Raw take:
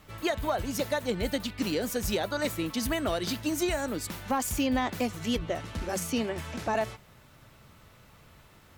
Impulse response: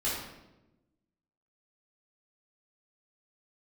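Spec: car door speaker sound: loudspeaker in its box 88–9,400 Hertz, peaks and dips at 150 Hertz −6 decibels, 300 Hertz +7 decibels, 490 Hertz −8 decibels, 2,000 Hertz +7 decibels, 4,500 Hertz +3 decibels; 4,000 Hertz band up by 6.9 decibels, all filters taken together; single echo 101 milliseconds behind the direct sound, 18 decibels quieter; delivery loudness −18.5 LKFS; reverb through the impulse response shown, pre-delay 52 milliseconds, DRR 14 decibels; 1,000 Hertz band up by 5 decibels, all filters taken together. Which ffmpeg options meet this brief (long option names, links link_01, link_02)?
-filter_complex "[0:a]equalizer=frequency=1000:width_type=o:gain=6.5,equalizer=frequency=4000:width_type=o:gain=6.5,aecho=1:1:101:0.126,asplit=2[link_01][link_02];[1:a]atrim=start_sample=2205,adelay=52[link_03];[link_02][link_03]afir=irnorm=-1:irlink=0,volume=-21.5dB[link_04];[link_01][link_04]amix=inputs=2:normalize=0,highpass=88,equalizer=frequency=150:width_type=q:width=4:gain=-6,equalizer=frequency=300:width_type=q:width=4:gain=7,equalizer=frequency=490:width_type=q:width=4:gain=-8,equalizer=frequency=2000:width_type=q:width=4:gain=7,equalizer=frequency=4500:width_type=q:width=4:gain=3,lowpass=frequency=9400:width=0.5412,lowpass=frequency=9400:width=1.3066,volume=8.5dB"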